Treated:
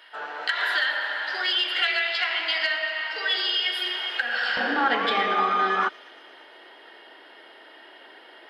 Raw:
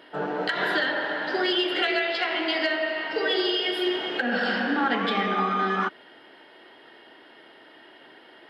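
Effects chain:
high-pass filter 1,200 Hz 12 dB per octave, from 0:04.57 410 Hz
delay with a high-pass on its return 116 ms, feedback 75%, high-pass 3,900 Hz, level −14 dB
level +3 dB

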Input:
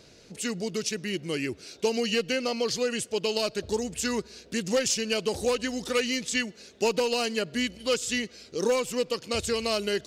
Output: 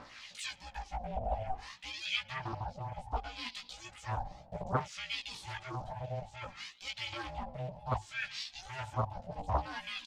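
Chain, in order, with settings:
high-shelf EQ 9,800 Hz +5.5 dB
mains-hum notches 60/120/180/240/300/360/420/480 Hz
reversed playback
downward compressor 6 to 1, threshold −35 dBFS, peak gain reduction 14 dB
reversed playback
brickwall limiter −35 dBFS, peak gain reduction 10.5 dB
auto-filter band-pass sine 0.62 Hz 280–3,400 Hz
phase shifter 0.42 Hz, delay 3.6 ms, feedback 52%
ring modulation 380 Hz
double-tracking delay 17 ms −2 dB
highs frequency-modulated by the lows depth 0.81 ms
level +13 dB

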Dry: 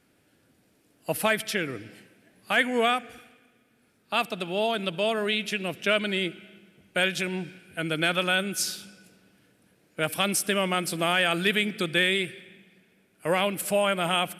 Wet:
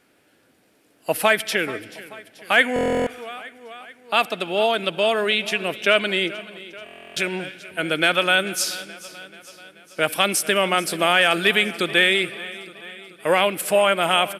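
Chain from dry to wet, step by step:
bass and treble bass −10 dB, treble −3 dB
repeating echo 434 ms, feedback 59%, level −18 dB
buffer that repeats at 0:02.74/0:06.84, samples 1,024, times 13
level +7 dB

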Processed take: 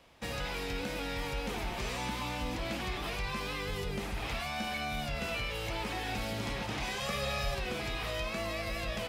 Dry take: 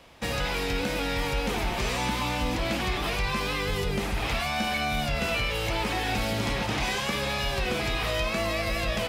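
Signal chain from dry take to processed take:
0:07.00–0:07.55: comb filter 1.6 ms, depth 94%
level −8 dB

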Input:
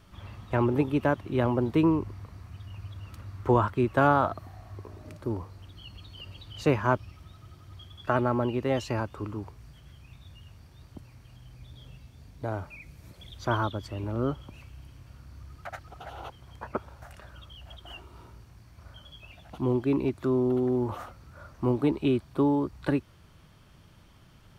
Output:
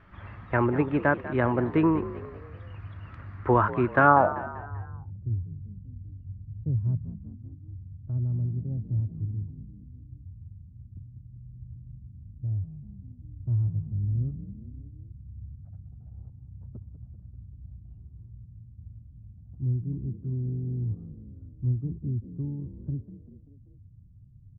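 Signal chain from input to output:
low-pass filter sweep 1,800 Hz → 110 Hz, 0:04.03–0:04.64
echo with shifted repeats 194 ms, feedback 46%, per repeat +47 Hz, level −15 dB

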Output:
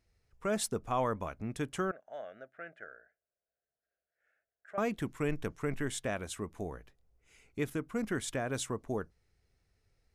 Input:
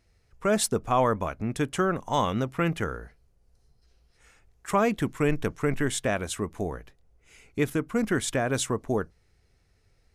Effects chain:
0:01.91–0:04.78: pair of resonant band-passes 1,000 Hz, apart 1.3 octaves
level −8.5 dB

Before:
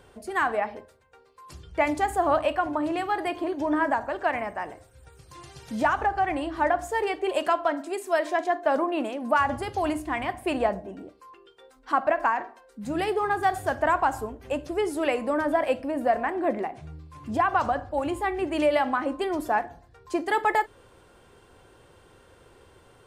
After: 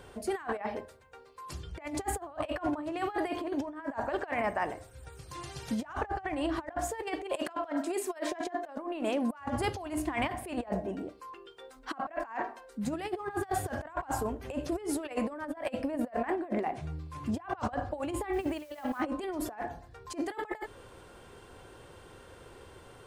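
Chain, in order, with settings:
compressor whose output falls as the input rises −31 dBFS, ratio −0.5
0:18.33–0:19.03: bit-depth reduction 10 bits, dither triangular
level −2.5 dB

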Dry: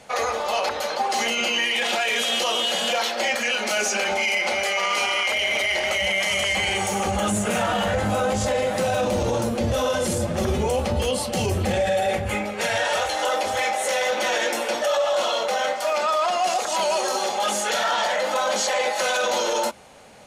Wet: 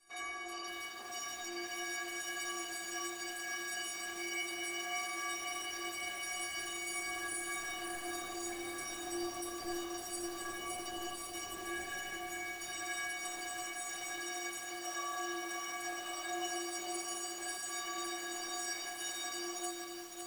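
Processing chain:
ceiling on every frequency bin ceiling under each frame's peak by 20 dB
parametric band 3,400 Hz −8 dB 0.49 octaves
stiff-string resonator 340 Hz, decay 0.53 s, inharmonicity 0.03
feedback echo with a low-pass in the loop 84 ms, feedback 78%, low-pass 4,100 Hz, level −8.5 dB
feedback echo at a low word length 556 ms, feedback 80%, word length 8 bits, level −6 dB
level −1 dB

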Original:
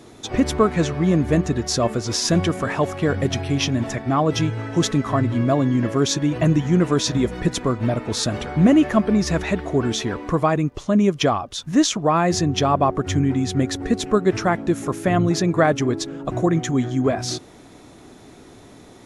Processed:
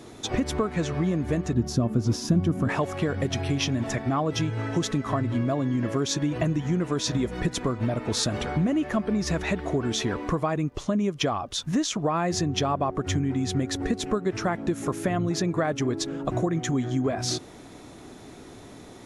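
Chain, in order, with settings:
downward compressor, threshold −22 dBFS, peak gain reduction 11.5 dB
0:01.53–0:02.69: graphic EQ with 10 bands 125 Hz +6 dB, 250 Hz +7 dB, 500 Hz −6 dB, 1,000 Hz −3 dB, 2,000 Hz −10 dB, 4,000 Hz −7 dB, 8,000 Hz −9 dB

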